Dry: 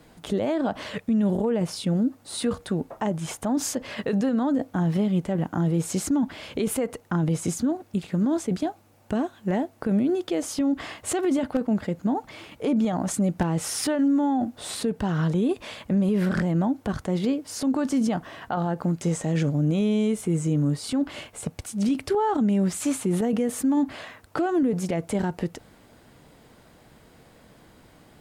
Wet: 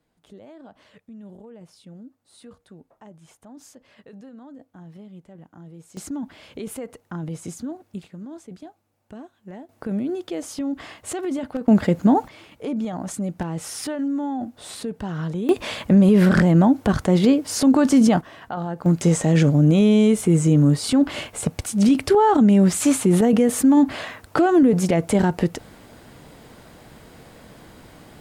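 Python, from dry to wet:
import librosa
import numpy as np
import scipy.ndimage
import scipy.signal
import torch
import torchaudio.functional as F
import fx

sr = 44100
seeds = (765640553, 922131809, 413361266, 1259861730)

y = fx.gain(x, sr, db=fx.steps((0.0, -19.5), (5.97, -7.0), (8.08, -14.0), (9.69, -3.0), (11.68, 9.0), (12.28, -3.5), (15.49, 8.5), (18.21, -2.0), (18.86, 7.5)))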